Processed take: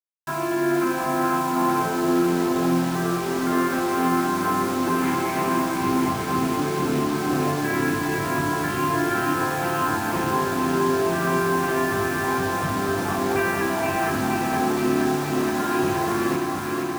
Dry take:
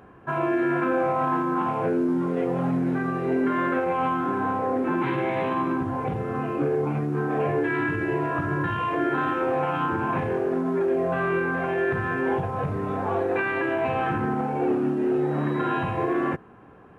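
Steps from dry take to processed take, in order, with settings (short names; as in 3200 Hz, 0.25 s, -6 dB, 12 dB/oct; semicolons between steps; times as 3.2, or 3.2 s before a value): thirty-one-band EQ 125 Hz -9 dB, 200 Hz +3 dB, 500 Hz -11 dB; bit-crush 6-bit; on a send: echo with dull and thin repeats by turns 0.236 s, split 1100 Hz, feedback 89%, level -3 dB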